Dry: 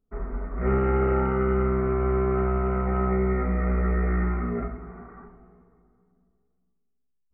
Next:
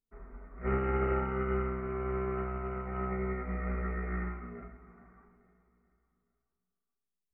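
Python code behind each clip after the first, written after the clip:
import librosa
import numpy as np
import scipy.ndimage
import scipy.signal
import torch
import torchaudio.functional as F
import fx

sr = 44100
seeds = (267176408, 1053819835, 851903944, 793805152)

y = fx.high_shelf(x, sr, hz=2200.0, db=12.0)
y = fx.echo_feedback(y, sr, ms=429, feedback_pct=48, wet_db=-18.5)
y = fx.upward_expand(y, sr, threshold_db=-27.0, expansion=2.5)
y = F.gain(torch.from_numpy(y), -7.0).numpy()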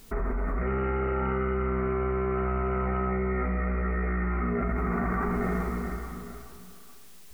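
y = fx.env_flatten(x, sr, amount_pct=100)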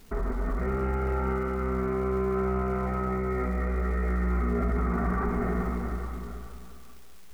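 y = fx.high_shelf(x, sr, hz=2400.0, db=-8.5)
y = fx.dmg_crackle(y, sr, seeds[0], per_s=500.0, level_db=-46.0)
y = fx.echo_feedback(y, sr, ms=197, feedback_pct=49, wet_db=-10)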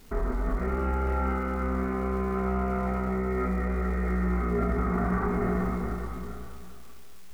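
y = fx.doubler(x, sr, ms=27.0, db=-5.5)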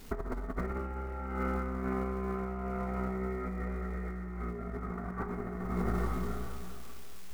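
y = fx.over_compress(x, sr, threshold_db=-31.0, ratio=-0.5)
y = F.gain(torch.from_numpy(y), -2.5).numpy()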